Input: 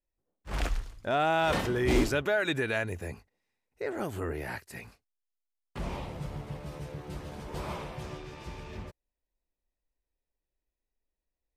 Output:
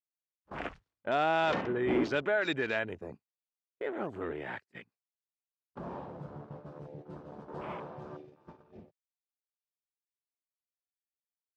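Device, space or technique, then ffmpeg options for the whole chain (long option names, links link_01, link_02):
over-cleaned archive recording: -filter_complex "[0:a]asplit=3[link_01][link_02][link_03];[link_01]afade=type=out:start_time=1.53:duration=0.02[link_04];[link_02]lowpass=frequency=2000:poles=1,afade=type=in:start_time=1.53:duration=0.02,afade=type=out:start_time=2.02:duration=0.02[link_05];[link_03]afade=type=in:start_time=2.02:duration=0.02[link_06];[link_04][link_05][link_06]amix=inputs=3:normalize=0,highpass=180,lowpass=5400,afwtdn=0.00708,agate=range=-15dB:threshold=-45dB:ratio=16:detection=peak,volume=-1.5dB"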